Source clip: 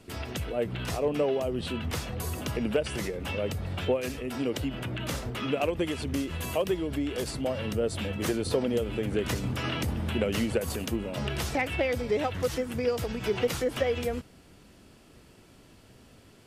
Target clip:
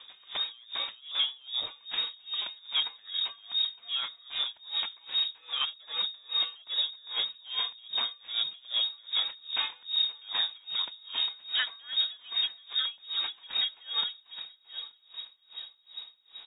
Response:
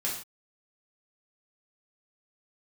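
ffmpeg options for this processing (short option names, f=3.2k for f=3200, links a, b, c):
-filter_complex "[0:a]asubboost=boost=10:cutoff=54,asplit=2[a][b];[b]acompressor=threshold=-35dB:ratio=6,volume=2dB[c];[a][c]amix=inputs=2:normalize=0,asoftclip=type=hard:threshold=-20dB,asplit=2[d][e];[e]aecho=0:1:879|1758|2637|3516:0.178|0.0694|0.027|0.0105[f];[d][f]amix=inputs=2:normalize=0,lowpass=f=3.2k:t=q:w=0.5098,lowpass=f=3.2k:t=q:w=0.6013,lowpass=f=3.2k:t=q:w=0.9,lowpass=f=3.2k:t=q:w=2.563,afreqshift=-3800,aeval=exprs='val(0)*pow(10,-28*(0.5-0.5*cos(2*PI*2.5*n/s))/20)':c=same,volume=-1.5dB"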